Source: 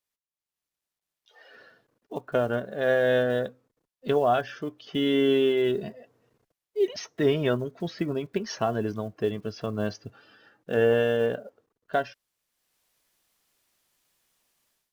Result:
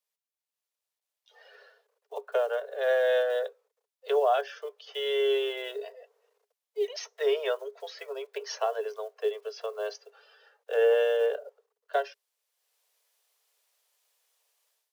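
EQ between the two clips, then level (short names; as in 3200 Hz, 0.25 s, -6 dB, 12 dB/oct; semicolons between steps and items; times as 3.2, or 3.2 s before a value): Chebyshev high-pass 410 Hz, order 10; bell 1700 Hz -3 dB 1.6 oct; 0.0 dB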